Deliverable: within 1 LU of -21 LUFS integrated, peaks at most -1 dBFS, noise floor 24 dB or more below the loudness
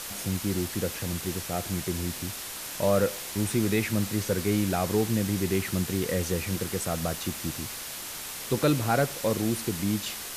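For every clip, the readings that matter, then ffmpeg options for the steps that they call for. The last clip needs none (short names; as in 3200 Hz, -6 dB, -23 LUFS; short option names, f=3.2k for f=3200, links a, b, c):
noise floor -38 dBFS; noise floor target -53 dBFS; loudness -28.5 LUFS; peak -12.0 dBFS; loudness target -21.0 LUFS
-> -af "afftdn=nr=15:nf=-38"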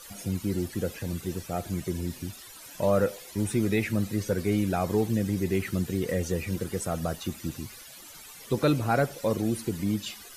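noise floor -47 dBFS; noise floor target -53 dBFS
-> -af "afftdn=nr=6:nf=-47"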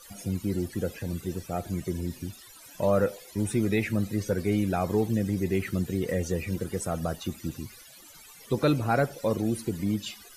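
noise floor -50 dBFS; noise floor target -53 dBFS
-> -af "afftdn=nr=6:nf=-50"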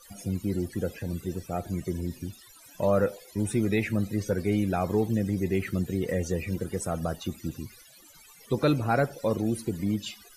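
noise floor -53 dBFS; loudness -29.0 LUFS; peak -12.5 dBFS; loudness target -21.0 LUFS
-> -af "volume=8dB"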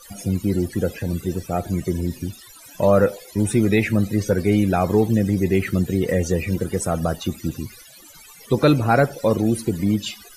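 loudness -21.0 LUFS; peak -4.5 dBFS; noise floor -45 dBFS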